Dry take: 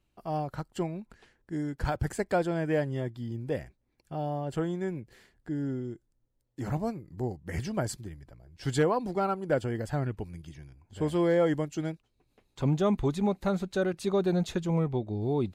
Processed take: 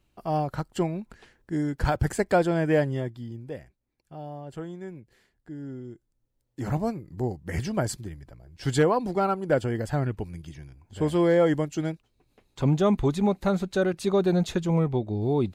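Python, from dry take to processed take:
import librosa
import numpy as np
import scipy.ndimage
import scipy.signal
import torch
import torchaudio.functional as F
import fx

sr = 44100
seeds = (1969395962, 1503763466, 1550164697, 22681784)

y = fx.gain(x, sr, db=fx.line((2.83, 5.5), (3.58, -6.0), (5.58, -6.0), (6.73, 4.0)))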